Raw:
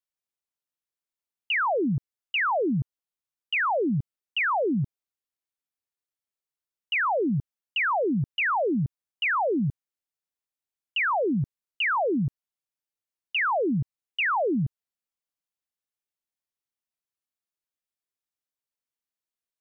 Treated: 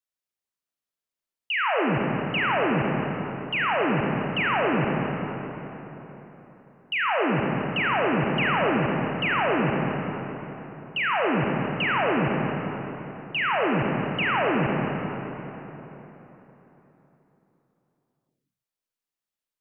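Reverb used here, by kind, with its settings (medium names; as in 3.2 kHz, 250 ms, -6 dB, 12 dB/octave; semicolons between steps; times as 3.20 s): algorithmic reverb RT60 3.9 s, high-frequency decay 0.6×, pre-delay 5 ms, DRR -1.5 dB; trim -1.5 dB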